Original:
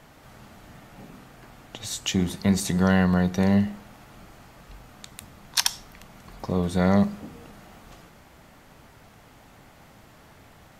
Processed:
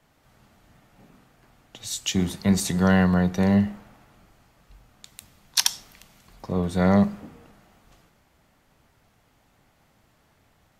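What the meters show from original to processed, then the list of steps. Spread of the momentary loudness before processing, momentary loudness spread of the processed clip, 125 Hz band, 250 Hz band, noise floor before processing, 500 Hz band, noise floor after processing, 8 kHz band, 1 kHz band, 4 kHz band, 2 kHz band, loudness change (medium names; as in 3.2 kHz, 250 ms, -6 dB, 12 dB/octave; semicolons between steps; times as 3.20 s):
20 LU, 12 LU, +0.5 dB, +1.0 dB, -52 dBFS, +1.0 dB, -64 dBFS, +2.0 dB, +1.0 dB, +1.0 dB, +0.5 dB, +1.0 dB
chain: three bands expanded up and down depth 40%; trim -1.5 dB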